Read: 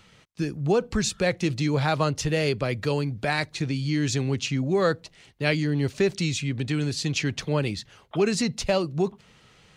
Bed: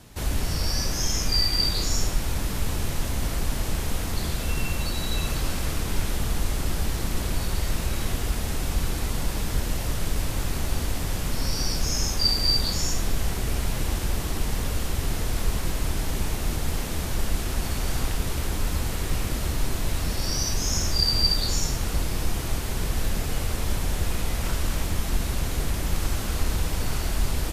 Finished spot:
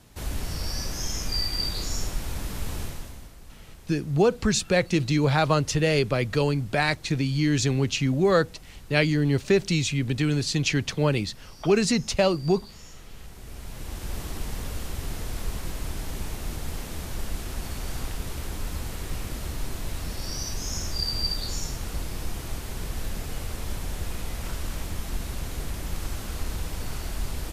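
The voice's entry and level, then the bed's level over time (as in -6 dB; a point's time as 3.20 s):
3.50 s, +2.0 dB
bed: 2.82 s -5 dB
3.35 s -21 dB
13.04 s -21 dB
14.17 s -6 dB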